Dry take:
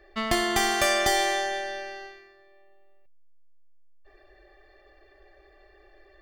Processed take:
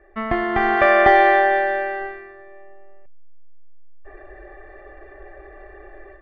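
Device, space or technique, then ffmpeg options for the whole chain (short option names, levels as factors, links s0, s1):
action camera in a waterproof case: -filter_complex "[0:a]asettb=1/sr,asplit=3[s0][s1][s2];[s0]atrim=end=0.764[s3];[s1]atrim=start=0.76:end=2,asetpts=PTS-STARTPTS,afade=t=in:d=0.004:c=qsin,afade=t=out:st=1.236:d=0.004:c=qsin,bass=f=250:g=-7,treble=f=4000:g=2[s4];[s2]atrim=start=1.996[s5];[s3][s4]acrossfade=d=0.004:c1=hsin:c2=qsin[s6];[s6][s5]acrossfade=d=0.004:c1=qsin:c2=hsin,lowpass=f=2000:w=0.5412,lowpass=f=2000:w=1.3066,dynaudnorm=f=510:g=3:m=3.98,volume=1.41" -ar 48000 -c:a aac -b:a 64k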